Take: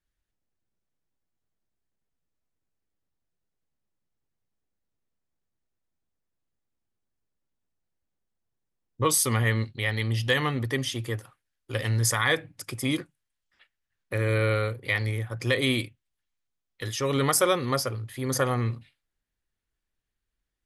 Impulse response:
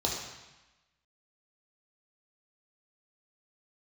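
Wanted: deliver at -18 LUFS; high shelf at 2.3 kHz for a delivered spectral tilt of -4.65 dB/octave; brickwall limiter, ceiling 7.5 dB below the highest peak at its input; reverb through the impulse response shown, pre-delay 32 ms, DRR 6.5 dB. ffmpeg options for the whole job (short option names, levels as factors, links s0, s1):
-filter_complex "[0:a]highshelf=f=2300:g=5,alimiter=limit=0.224:level=0:latency=1,asplit=2[s0][s1];[1:a]atrim=start_sample=2205,adelay=32[s2];[s1][s2]afir=irnorm=-1:irlink=0,volume=0.188[s3];[s0][s3]amix=inputs=2:normalize=0,volume=2.24"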